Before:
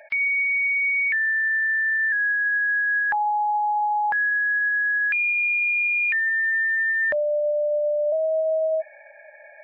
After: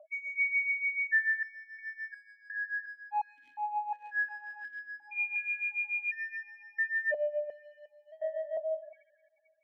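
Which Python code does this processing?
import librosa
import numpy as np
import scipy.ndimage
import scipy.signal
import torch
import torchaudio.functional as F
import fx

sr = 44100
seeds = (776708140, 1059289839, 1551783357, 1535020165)

p1 = fx.dereverb_blind(x, sr, rt60_s=1.3)
p2 = fx.spec_topn(p1, sr, count=2)
p3 = fx.dmg_crackle(p2, sr, seeds[0], per_s=340.0, level_db=-42.0, at=(3.36, 4.79), fade=0.02)
p4 = np.clip(p3, -10.0 ** (-31.0 / 20.0), 10.0 ** (-31.0 / 20.0))
p5 = p3 + (p4 * librosa.db_to_amplitude(-10.0))
p6 = p5 * (1.0 - 0.83 / 2.0 + 0.83 / 2.0 * np.cos(2.0 * np.pi * 6.9 * (np.arange(len(p5)) / sr)))
p7 = p6 + fx.echo_filtered(p6, sr, ms=257, feedback_pct=78, hz=2000.0, wet_db=-12.0, dry=0)
p8 = fx.vowel_held(p7, sr, hz=2.8)
y = p8 * librosa.db_to_amplitude(5.5)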